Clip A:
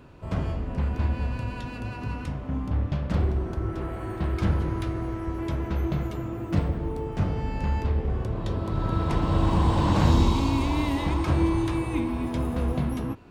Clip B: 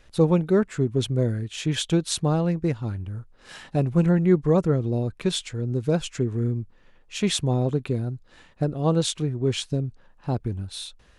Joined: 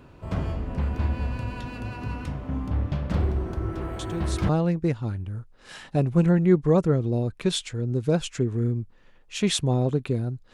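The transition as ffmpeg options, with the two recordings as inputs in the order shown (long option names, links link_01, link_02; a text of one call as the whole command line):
ffmpeg -i cue0.wav -i cue1.wav -filter_complex "[1:a]asplit=2[link_01][link_02];[0:a]apad=whole_dur=10.53,atrim=end=10.53,atrim=end=4.492[link_03];[link_02]atrim=start=2.288:end=8.33[link_04];[link_01]atrim=start=1.79:end=2.29,asetpts=PTS-STARTPTS,volume=-11dB,afade=type=in:duration=0.004:curve=hsin,afade=type=out:start_time=0.496:duration=0.004:curve=hsin,adelay=3990[link_05];[link_03][link_04]acrossfade=duration=0.004:curve1=hsin:curve2=hsin[link_06];[link_06][link_05]amix=inputs=2:normalize=0" out.wav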